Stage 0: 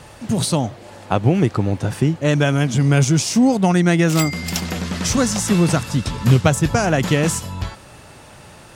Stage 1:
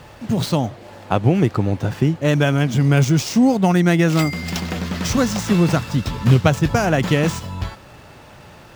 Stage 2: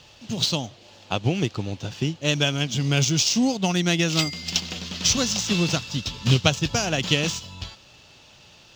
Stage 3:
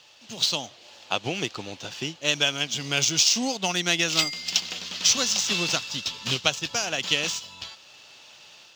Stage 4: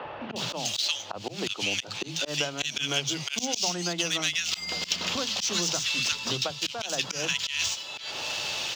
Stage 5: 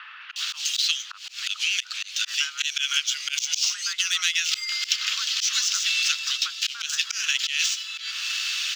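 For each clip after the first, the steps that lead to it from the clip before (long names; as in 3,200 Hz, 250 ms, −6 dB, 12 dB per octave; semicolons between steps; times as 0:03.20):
running median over 5 samples
flat-topped bell 4,300 Hz +14.5 dB; expander for the loud parts 1.5 to 1, over −23 dBFS; level −5.5 dB
high-pass filter 820 Hz 6 dB per octave; automatic gain control gain up to 5 dB; level −2 dB
three-band delay without the direct sound mids, lows, highs 40/360 ms, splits 210/1,500 Hz; volume swells 180 ms; multiband upward and downward compressor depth 100%
Butterworth high-pass 1,300 Hz 48 dB per octave; level +4.5 dB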